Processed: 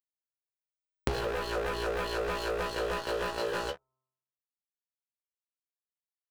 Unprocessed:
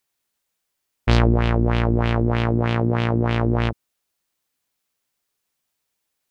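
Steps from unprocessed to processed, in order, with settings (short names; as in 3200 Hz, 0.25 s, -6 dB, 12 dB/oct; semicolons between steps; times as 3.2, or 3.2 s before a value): rattling part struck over -22 dBFS, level -20 dBFS; flipped gate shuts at -14 dBFS, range -25 dB; fuzz box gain 37 dB, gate -40 dBFS; tilt shelf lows +5.5 dB, about 840 Hz; metallic resonator 67 Hz, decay 0.27 s, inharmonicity 0.002; de-hum 130.4 Hz, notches 10; small resonant body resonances 390/1000/2400/3400 Hz, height 16 dB, ringing for 35 ms; sample leveller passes 5; upward compressor, threshold -27 dBFS; formant shift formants +4 st; doubler 16 ms -9 dB; compressor 20:1, threshold -32 dBFS, peak gain reduction 23 dB; gain +3 dB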